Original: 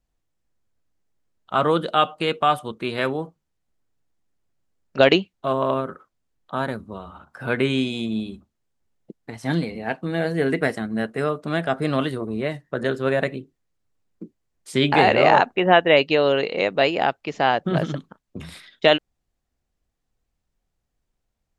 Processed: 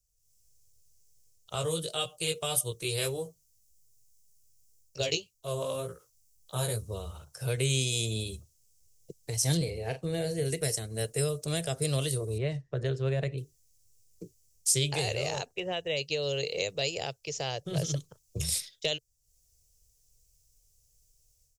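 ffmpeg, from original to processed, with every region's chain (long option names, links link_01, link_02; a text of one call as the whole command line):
ffmpeg -i in.wav -filter_complex "[0:a]asettb=1/sr,asplit=3[link_01][link_02][link_03];[link_01]atrim=end=1.554[link_04];[link_02]atrim=start=1.55:end=6.82,asetpts=PTS-STARTPTS,afade=type=in:duration=0.004:curve=qsin,afade=type=out:start_time=5.266:duration=0.004:curve=qsin,highshelf=frequency=9000:gain=6,flanger=delay=16.5:depth=2.4:speed=1.8[link_05];[link_03]atrim=start=6.816[link_06];[link_04][link_05]acrossfade=duration=0.004:curve1=hsin:curve2=qsin[link_07];[link_07][link_06]acrossfade=duration=0.004:curve1=qsin:curve2=hsin,asettb=1/sr,asplit=3[link_08][link_09][link_10];[link_08]atrim=end=9.574[link_11];[link_09]atrim=start=9.57:end=10.45,asetpts=PTS-STARTPTS,afade=type=in:duration=0.004:curve=qsin,afade=type=out:start_time=0.876:duration=0.004:curve=qsin,highshelf=frequency=3800:gain=-11.5,asplit=2[link_12][link_13];[link_13]adelay=39,volume=-9dB[link_14];[link_12][link_14]amix=inputs=2:normalize=0,atrim=end_sample=38808[link_15];[link_10]atrim=start=10.446[link_16];[link_11][link_15]acrossfade=duration=0.004:curve1=hsin:curve2=qsin[link_17];[link_17][link_16]acrossfade=duration=0.004:curve1=qsin:curve2=hsin,asettb=1/sr,asplit=3[link_18][link_19][link_20];[link_18]atrim=end=12.384[link_21];[link_19]atrim=start=12.38:end=13.38,asetpts=PTS-STARTPTS,afade=type=in:duration=0.004:curve=qsin,afade=type=out:start_time=0.996:duration=0.004:curve=qsin,lowpass=2300,equalizer=frequency=510:width_type=o:width=0.34:gain=-6[link_22];[link_20]atrim=start=13.376[link_23];[link_21][link_22]acrossfade=duration=0.004:curve1=hsin:curve2=qsin[link_24];[link_24][link_23]acrossfade=duration=0.004:curve1=qsin:curve2=hsin,dynaudnorm=framelen=160:gausssize=3:maxgain=12dB,firequalizer=gain_entry='entry(130,0);entry(220,-25);entry(450,-5);entry(800,-17);entry(1500,-19);entry(2600,-6);entry(3700,-3);entry(5600,14)':delay=0.05:min_phase=1,acrossover=split=230|3000[link_25][link_26][link_27];[link_26]acompressor=threshold=-26dB:ratio=6[link_28];[link_25][link_28][link_27]amix=inputs=3:normalize=0,volume=-4.5dB" out.wav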